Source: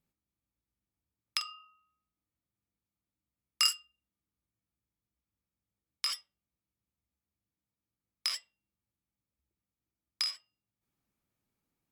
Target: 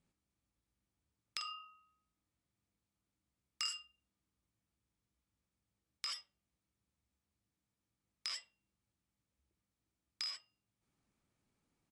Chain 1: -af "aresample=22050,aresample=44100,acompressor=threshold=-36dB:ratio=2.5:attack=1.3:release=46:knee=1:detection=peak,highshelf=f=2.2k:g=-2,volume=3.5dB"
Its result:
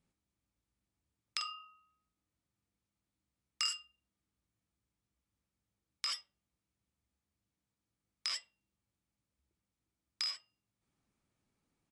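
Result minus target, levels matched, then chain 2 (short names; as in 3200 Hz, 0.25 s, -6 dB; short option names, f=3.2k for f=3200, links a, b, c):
compressor: peak gain reduction -4.5 dB
-af "aresample=22050,aresample=44100,acompressor=threshold=-43.5dB:ratio=2.5:attack=1.3:release=46:knee=1:detection=peak,highshelf=f=2.2k:g=-2,volume=3.5dB"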